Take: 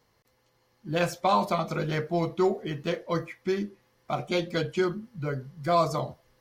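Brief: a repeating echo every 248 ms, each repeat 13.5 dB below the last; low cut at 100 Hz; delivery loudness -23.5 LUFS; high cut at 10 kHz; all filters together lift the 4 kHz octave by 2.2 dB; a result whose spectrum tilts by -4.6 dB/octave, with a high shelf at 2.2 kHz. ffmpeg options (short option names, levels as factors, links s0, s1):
-af "highpass=100,lowpass=10000,highshelf=f=2200:g=-6.5,equalizer=f=4000:t=o:g=8.5,aecho=1:1:248|496:0.211|0.0444,volume=1.88"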